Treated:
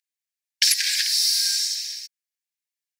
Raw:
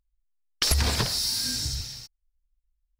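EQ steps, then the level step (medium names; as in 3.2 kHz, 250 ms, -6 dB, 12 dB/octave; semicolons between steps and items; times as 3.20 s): rippled Chebyshev high-pass 1.6 kHz, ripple 3 dB; +7.5 dB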